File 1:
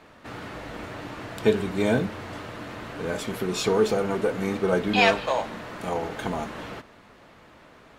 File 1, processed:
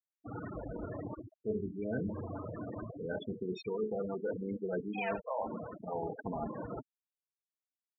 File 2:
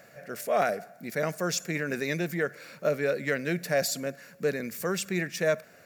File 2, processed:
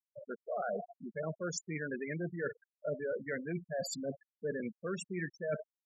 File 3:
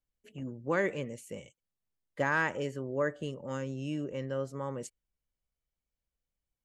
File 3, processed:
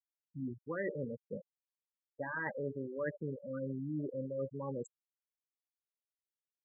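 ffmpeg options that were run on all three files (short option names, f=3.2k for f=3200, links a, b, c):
-af "aecho=1:1:19|65:0.188|0.141,areverse,acompressor=threshold=-35dB:ratio=5,areverse,afftfilt=real='re*gte(hypot(re,im),0.0316)':imag='im*gte(hypot(re,im),0.0316)':win_size=1024:overlap=0.75,acontrast=50,volume=-5dB"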